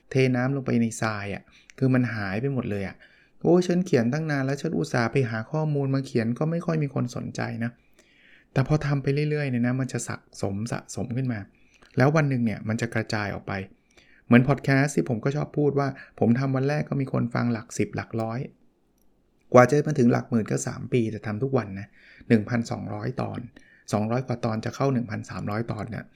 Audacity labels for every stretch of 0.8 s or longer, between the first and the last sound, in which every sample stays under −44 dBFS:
18.500000	19.520000	silence